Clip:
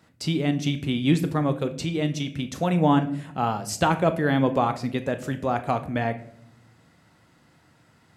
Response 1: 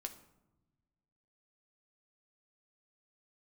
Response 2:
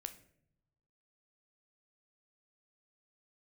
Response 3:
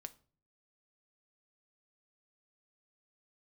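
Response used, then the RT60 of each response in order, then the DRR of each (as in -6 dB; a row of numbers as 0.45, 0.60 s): 2; 1.0 s, not exponential, 0.45 s; 5.0, 8.5, 10.0 dB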